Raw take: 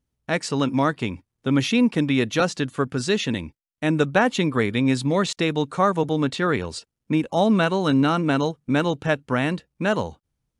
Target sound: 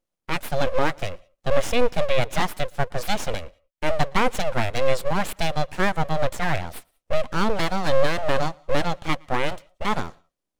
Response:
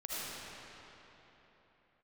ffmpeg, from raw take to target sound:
-filter_complex "[0:a]lowshelf=frequency=200:width_type=q:width=3:gain=-9.5,aeval=exprs='abs(val(0))':channel_layout=same,asplit=2[link_01][link_02];[1:a]atrim=start_sample=2205,atrim=end_sample=3528,adelay=115[link_03];[link_02][link_03]afir=irnorm=-1:irlink=0,volume=-23.5dB[link_04];[link_01][link_04]amix=inputs=2:normalize=0,volume=-1dB"

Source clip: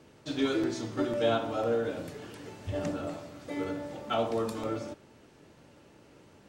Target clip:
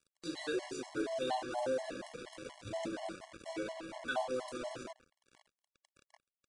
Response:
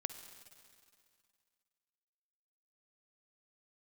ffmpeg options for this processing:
-filter_complex "[0:a]equalizer=frequency=91:width_type=o:width=1.4:gain=-12.5,asplit=2[link_01][link_02];[link_02]acompressor=threshold=-47dB:ratio=4,volume=2.5dB[link_03];[link_01][link_03]amix=inputs=2:normalize=0,asplit=2[link_04][link_05];[link_05]adelay=641.4,volume=-18dB,highshelf=frequency=4000:gain=-14.4[link_06];[link_04][link_06]amix=inputs=2:normalize=0,acrusher=bits=5:mix=0:aa=0.5,asetrate=49501,aresample=44100,atempo=0.890899,acompressor=mode=upward:threshold=-39dB:ratio=2.5,aresample=22050,aresample=44100,afftfilt=real='re*gt(sin(2*PI*4.2*pts/sr)*(1-2*mod(floor(b*sr/1024/560),2)),0)':imag='im*gt(sin(2*PI*4.2*pts/sr)*(1-2*mod(floor(b*sr/1024/560),2)),0)':win_size=1024:overlap=0.75,volume=-5.5dB"

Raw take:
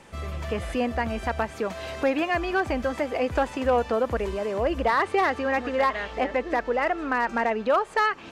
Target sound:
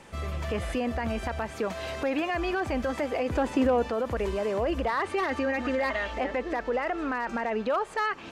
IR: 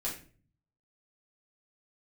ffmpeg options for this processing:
-filter_complex "[0:a]asettb=1/sr,asplit=3[link_01][link_02][link_03];[link_01]atrim=end=5.094[link_04];[link_02]atrim=start=5.09:end=6.2,asetpts=PTS-STARTPTS,afade=type=in:duration=0.004:curve=qsin,afade=type=out:start_time=1.106:duration=0.004:curve=qsin,aecho=1:1:3.3:0.67,atrim=end_sample=48951[link_05];[link_03]atrim=start=6.196[link_06];[link_04][link_05]acrossfade=duration=0.004:curve1=hsin:curve2=qsin[link_07];[link_07][link_06]acrossfade=duration=0.004:curve1=qsin:curve2=hsin,alimiter=limit=-20dB:level=0:latency=1:release=19,asettb=1/sr,asplit=3[link_08][link_09][link_10];[link_08]atrim=end=3.284[link_11];[link_09]atrim=start=3.28:end=3.88,asetpts=PTS-STARTPTS,afade=type=in:duration=0.004:curve=qsin,afade=type=out:start_time=0.596:duration=0.004:curve=qsin,equalizer=frequency=300:width=0.95:gain=8[link_12];[link_10]atrim=start=3.876[link_13];[link_11][link_12]acrossfade=duration=0.004:curve1=hsin:curve2=qsin[link_14];[link_14][link_13]acrossfade=duration=0.004:curve1=qsin:curve2=hsin"

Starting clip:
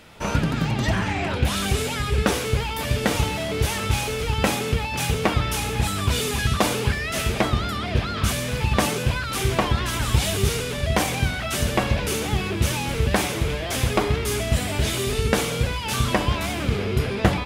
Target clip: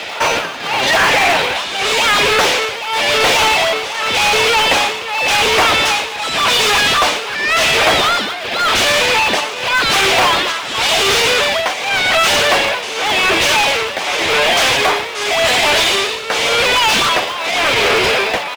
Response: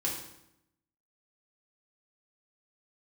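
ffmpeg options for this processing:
-filter_complex "[0:a]acrossover=split=440 7700:gain=0.112 1 0.0708[link_01][link_02][link_03];[link_01][link_02][link_03]amix=inputs=3:normalize=0,acrossover=split=130|1600[link_04][link_05][link_06];[link_05]acrusher=samples=18:mix=1:aa=0.000001:lfo=1:lforange=28.8:lforate=3.9[link_07];[link_04][link_07][link_06]amix=inputs=3:normalize=0,tremolo=f=0.95:d=0.92,asplit=2[link_08][link_09];[link_09]highpass=frequency=720:poles=1,volume=32dB,asoftclip=type=tanh:threshold=-8dB[link_10];[link_08][link_10]amix=inputs=2:normalize=0,lowpass=frequency=3500:poles=1,volume=-6dB,atempo=0.94,asplit=7[link_11][link_12][link_13][link_14][link_15][link_16][link_17];[link_12]adelay=120,afreqshift=100,volume=-15.5dB[link_18];[link_13]adelay=240,afreqshift=200,volume=-19.8dB[link_19];[link_14]adelay=360,afreqshift=300,volume=-24.1dB[link_20];[link_15]adelay=480,afreqshift=400,volume=-28.4dB[link_21];[link_16]adelay=600,afreqshift=500,volume=-32.7dB[link_22];[link_17]adelay=720,afreqshift=600,volume=-37dB[link_23];[link_11][link_18][link_19][link_20][link_21][link_22][link_23]amix=inputs=7:normalize=0,volume=4.5dB"

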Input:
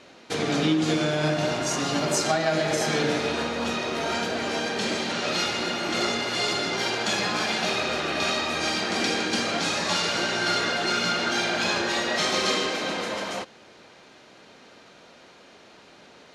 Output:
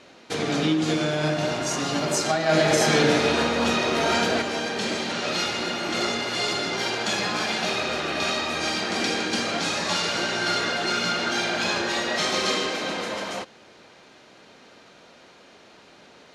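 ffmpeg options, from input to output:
ffmpeg -i in.wav -filter_complex "[0:a]asettb=1/sr,asplit=3[link_01][link_02][link_03];[link_01]atrim=end=2.494[link_04];[link_02]atrim=start=2.49:end=4.42,asetpts=PTS-STARTPTS,afade=type=in:duration=0.004:curve=qsin,afade=type=out:start_time=1.926:duration=0.004:curve=qsin,acontrast=31[link_05];[link_03]atrim=start=4.416[link_06];[link_04][link_05]acrossfade=duration=0.004:curve1=hsin:curve2=qsin[link_07];[link_07][link_06]acrossfade=duration=0.004:curve1=qsin:curve2=hsin" out.wav

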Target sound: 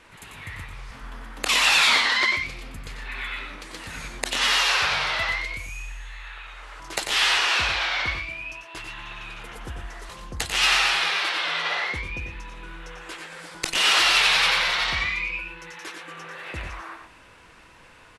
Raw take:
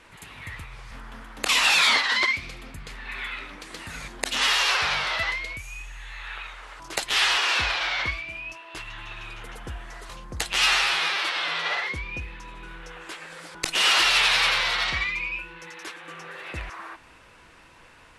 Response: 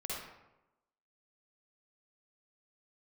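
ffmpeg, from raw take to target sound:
-filter_complex "[0:a]asettb=1/sr,asplit=3[link_01][link_02][link_03];[link_01]atrim=end=5.924[link_04];[link_02]atrim=start=5.92:end=6.73,asetpts=PTS-STARTPTS,afade=type=in:duration=0.004:curve=qsin,afade=type=out:start_time=0.806:duration=0.004:curve=qsin,acompressor=threshold=-38dB:ratio=6[link_05];[link_03]atrim=start=6.726[link_06];[link_04][link_05]acrossfade=duration=0.004:curve1=hsin:curve2=qsin[link_07];[link_07][link_06]acrossfade=duration=0.004:curve1=qsin:curve2=hsin,aecho=1:1:93|115:0.422|0.376"

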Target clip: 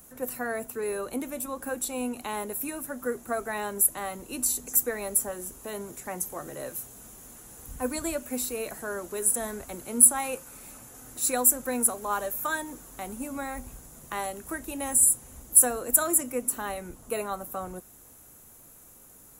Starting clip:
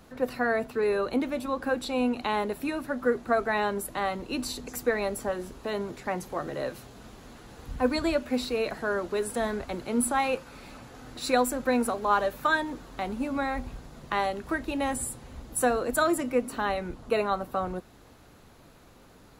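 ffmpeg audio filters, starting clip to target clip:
ffmpeg -i in.wav -af "aexciter=amount=7:drive=8.4:freq=6500,volume=-5.5dB" out.wav

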